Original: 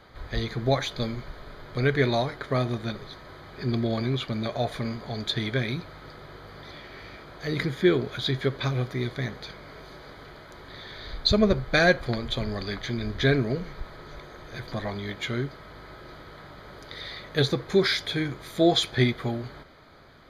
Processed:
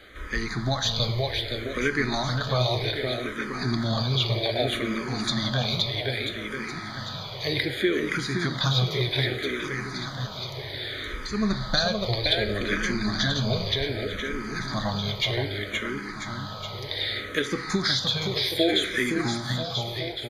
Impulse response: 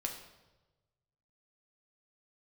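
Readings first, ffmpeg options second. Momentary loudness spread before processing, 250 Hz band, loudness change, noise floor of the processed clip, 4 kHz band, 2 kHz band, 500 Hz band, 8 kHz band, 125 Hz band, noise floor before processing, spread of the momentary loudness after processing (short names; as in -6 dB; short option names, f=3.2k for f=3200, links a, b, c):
22 LU, -0.5 dB, 0.0 dB, -36 dBFS, +5.5 dB, +2.5 dB, -1.5 dB, +6.5 dB, +1.0 dB, -47 dBFS, 9 LU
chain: -filter_complex "[0:a]highshelf=f=2.1k:g=11,acompressor=threshold=-22dB:ratio=10,aecho=1:1:520|988|1409|1788|2129:0.631|0.398|0.251|0.158|0.1,asplit=2[a][b];[1:a]atrim=start_sample=2205,asetrate=43218,aresample=44100,lowpass=7.9k[c];[b][c]afir=irnorm=-1:irlink=0,volume=-4dB[d];[a][d]amix=inputs=2:normalize=0,asplit=2[e][f];[f]afreqshift=-0.64[g];[e][g]amix=inputs=2:normalize=1"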